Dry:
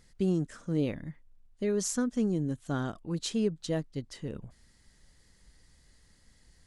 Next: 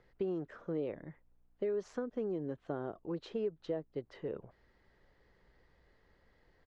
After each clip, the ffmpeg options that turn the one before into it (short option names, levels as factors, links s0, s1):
-filter_complex "[0:a]firequalizer=gain_entry='entry(250,0);entry(380,13);entry(8800,-28)':delay=0.05:min_phase=1,acrossover=split=110|730[s0][s1][s2];[s0]acompressor=threshold=0.00141:ratio=4[s3];[s1]acompressor=threshold=0.0447:ratio=4[s4];[s2]acompressor=threshold=0.00708:ratio=4[s5];[s3][s4][s5]amix=inputs=3:normalize=0,aeval=exprs='val(0)+0.000398*(sin(2*PI*60*n/s)+sin(2*PI*2*60*n/s)/2+sin(2*PI*3*60*n/s)/3+sin(2*PI*4*60*n/s)/4+sin(2*PI*5*60*n/s)/5)':c=same,volume=0.398"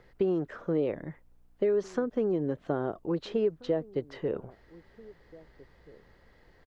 -filter_complex "[0:a]asplit=2[s0][s1];[s1]adelay=1633,volume=0.0794,highshelf=f=4000:g=-36.7[s2];[s0][s2]amix=inputs=2:normalize=0,volume=2.66"